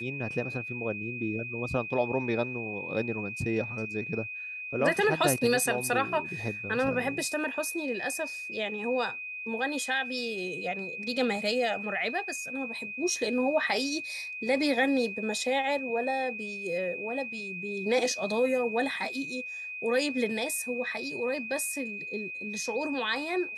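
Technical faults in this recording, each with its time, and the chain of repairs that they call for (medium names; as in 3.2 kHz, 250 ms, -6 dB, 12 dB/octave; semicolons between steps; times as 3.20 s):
whine 2.5 kHz -36 dBFS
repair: band-stop 2.5 kHz, Q 30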